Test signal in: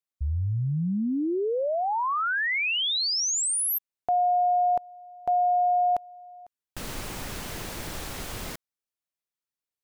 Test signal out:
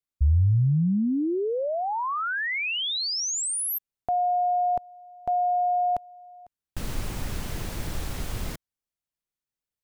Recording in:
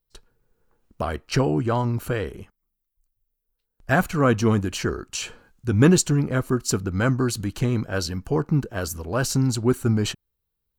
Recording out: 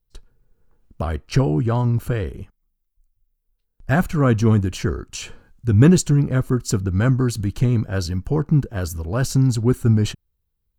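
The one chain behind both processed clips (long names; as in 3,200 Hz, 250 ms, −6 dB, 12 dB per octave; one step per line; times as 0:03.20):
low-shelf EQ 190 Hz +11.5 dB
level −2 dB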